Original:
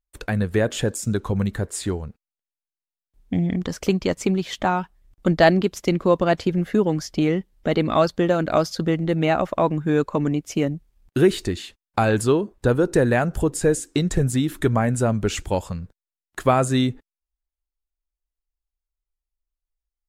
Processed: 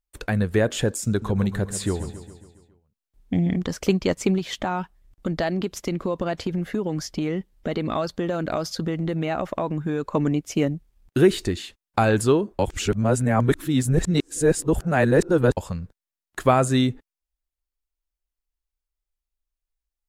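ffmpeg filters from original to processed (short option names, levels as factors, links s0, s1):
-filter_complex "[0:a]asettb=1/sr,asplit=3[s0][s1][s2];[s0]atrim=end=1.084[s3];[s1]atrim=start=1.08:end=3.58,asetpts=PTS-STARTPTS,afade=t=in:d=0.004:c=qsin,afade=t=out:st=2.496:d=0.004:c=qsin,aecho=1:1:137|274|411|548|685|822:0.251|0.143|0.0816|0.0465|0.0265|0.0151,atrim=end_sample=110250[s4];[s2]atrim=start=3.576[s5];[s3][s4]acrossfade=d=0.004:c1=hsin:c2=qsin[s6];[s6][s5]acrossfade=d=0.004:c1=qsin:c2=hsin,asettb=1/sr,asplit=3[s7][s8][s9];[s7]atrim=end=4.384[s10];[s8]atrim=start=4.38:end=10.07,asetpts=PTS-STARTPTS,afade=t=in:d=0.004:c=qsin,afade=t=out:st=5.686:d=0.004:c=qsin,acompressor=threshold=0.0891:ratio=5:attack=3.2:release=140:knee=1:detection=peak[s11];[s9]atrim=start=10.066[s12];[s10][s11]acrossfade=d=0.004:c1=hsin:c2=qsin[s13];[s13][s12]acrossfade=d=0.004:c1=qsin:c2=hsin,asplit=3[s14][s15][s16];[s14]atrim=end=12.592[s17];[s15]atrim=start=12.588:end=15.572,asetpts=PTS-STARTPTS,areverse[s18];[s16]atrim=start=15.568[s19];[s17][s18]acrossfade=d=0.004:c1=hsin:c2=hsin[s20];[s20][s19]acrossfade=d=0.004:c1=hsin:c2=hsin"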